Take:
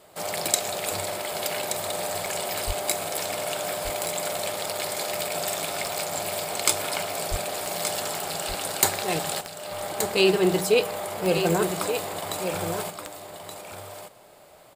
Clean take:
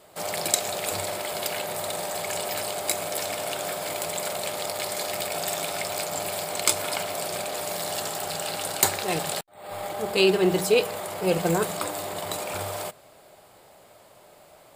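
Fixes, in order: de-click; 2.66–2.78 s: high-pass 140 Hz 24 dB/octave; 7.30–7.42 s: high-pass 140 Hz 24 dB/octave; inverse comb 1175 ms -8.5 dB

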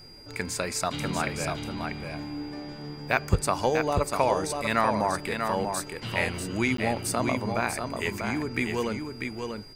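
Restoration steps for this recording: band-stop 4.8 kHz, Q 30; interpolate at 6.77 s, 13 ms; expander -31 dBFS, range -21 dB; inverse comb 642 ms -5.5 dB

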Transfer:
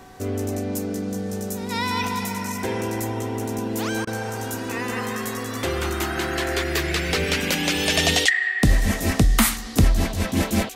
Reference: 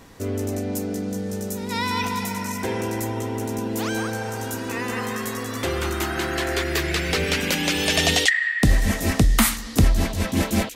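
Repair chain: de-hum 383.5 Hz, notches 4; band-stop 740 Hz, Q 30; interpolate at 4.05 s, 20 ms

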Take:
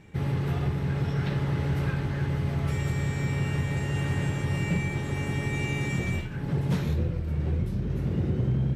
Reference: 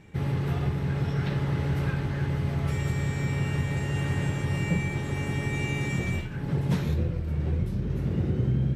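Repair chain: clip repair -19.5 dBFS

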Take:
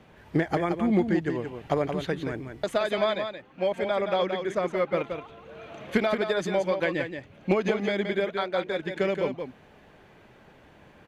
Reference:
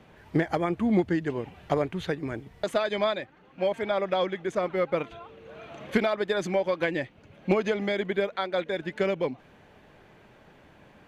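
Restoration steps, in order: inverse comb 174 ms -7 dB

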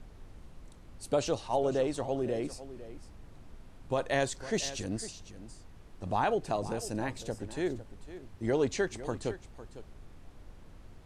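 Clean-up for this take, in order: noise print and reduce 26 dB; inverse comb 503 ms -14.5 dB

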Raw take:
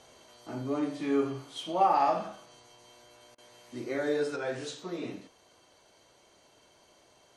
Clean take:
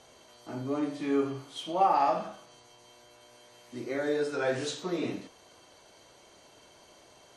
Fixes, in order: interpolate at 3.35 s, 30 ms; trim 0 dB, from 4.36 s +5 dB

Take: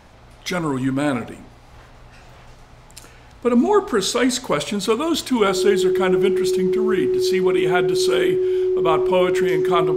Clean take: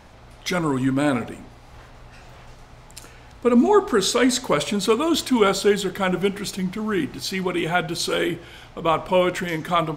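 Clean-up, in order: band-stop 370 Hz, Q 30

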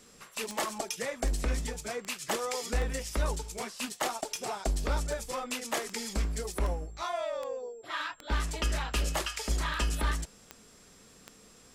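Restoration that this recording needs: de-click; band-stop 7.5 kHz, Q 30

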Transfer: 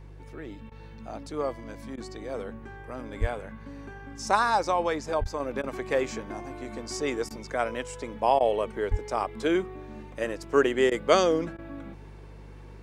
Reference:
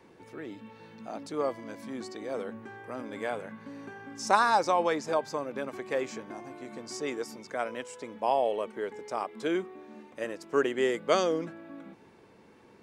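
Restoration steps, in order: de-hum 49.6 Hz, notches 3; 3.20–3.32 s: high-pass 140 Hz 24 dB/octave; 5.20–5.32 s: high-pass 140 Hz 24 dB/octave; 8.90–9.02 s: high-pass 140 Hz 24 dB/octave; interpolate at 0.70/1.96/5.24/5.62/7.29/8.39/10.90/11.57 s, 14 ms; trim 0 dB, from 5.40 s -4.5 dB

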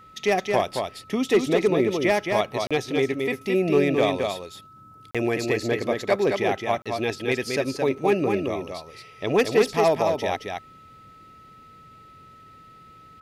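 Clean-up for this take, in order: band-stop 1.3 kHz, Q 30; interpolate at 2.67/5.11/6.82 s, 36 ms; inverse comb 219 ms -4.5 dB

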